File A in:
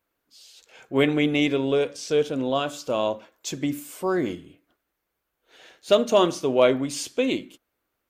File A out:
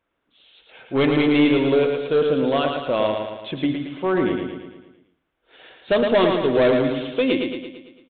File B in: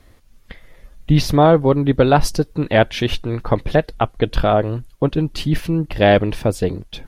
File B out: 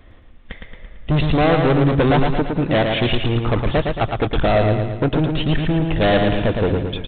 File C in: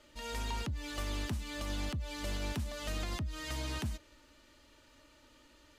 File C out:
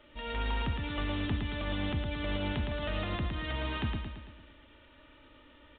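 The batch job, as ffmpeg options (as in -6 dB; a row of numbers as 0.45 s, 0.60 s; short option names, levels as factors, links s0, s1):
-af "aresample=8000,asoftclip=type=hard:threshold=0.133,aresample=44100,aecho=1:1:112|224|336|448|560|672|784:0.596|0.316|0.167|0.0887|0.047|0.0249|0.0132,volume=1.5"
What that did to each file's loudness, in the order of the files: +3.5 LU, -0.5 LU, +4.0 LU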